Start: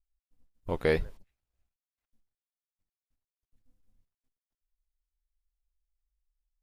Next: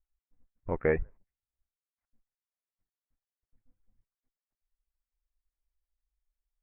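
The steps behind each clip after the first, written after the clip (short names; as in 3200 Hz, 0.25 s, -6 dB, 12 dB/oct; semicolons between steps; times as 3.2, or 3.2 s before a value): steep low-pass 2200 Hz 48 dB/oct; reverb removal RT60 0.8 s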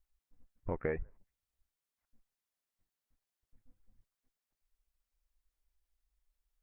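compressor 3:1, threshold -39 dBFS, peak gain reduction 13 dB; gain +3.5 dB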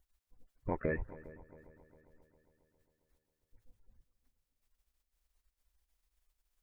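bin magnitudes rounded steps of 30 dB; multi-head echo 0.135 s, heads second and third, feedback 53%, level -18.5 dB; dynamic EQ 2400 Hz, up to +5 dB, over -59 dBFS, Q 0.86; gain +1 dB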